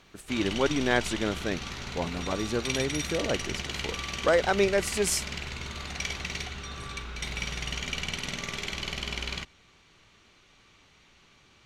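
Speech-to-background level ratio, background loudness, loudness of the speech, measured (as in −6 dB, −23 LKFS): 5.0 dB, −34.0 LKFS, −29.0 LKFS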